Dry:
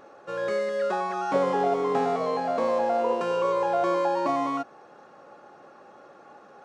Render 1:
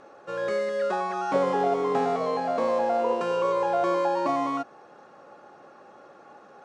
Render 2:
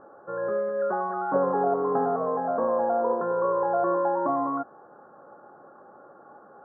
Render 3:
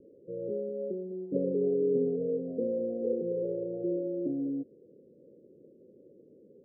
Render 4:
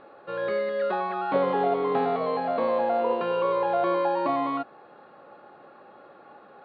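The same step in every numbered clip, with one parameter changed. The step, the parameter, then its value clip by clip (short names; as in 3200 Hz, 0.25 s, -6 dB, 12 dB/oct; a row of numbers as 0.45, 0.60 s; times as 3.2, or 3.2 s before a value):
steep low-pass, frequency: 11000, 1600, 500, 4300 Hz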